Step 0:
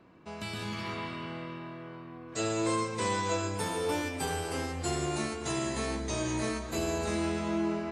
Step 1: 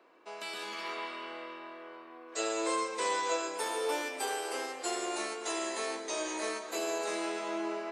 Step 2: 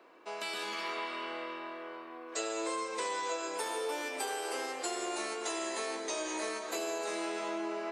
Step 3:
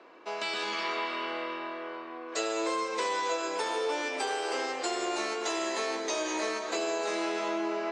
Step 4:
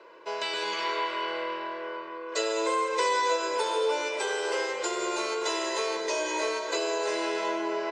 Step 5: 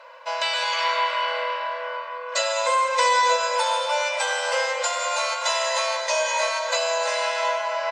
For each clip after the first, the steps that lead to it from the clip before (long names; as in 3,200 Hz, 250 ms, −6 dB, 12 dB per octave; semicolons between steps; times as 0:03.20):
high-pass filter 380 Hz 24 dB per octave
downward compressor 4 to 1, threshold −37 dBFS, peak gain reduction 8.5 dB; level +3.5 dB
low-pass filter 6,800 Hz 24 dB per octave; level +5 dB
comb filter 2 ms, depth 88%
linear-phase brick-wall high-pass 490 Hz; level +7.5 dB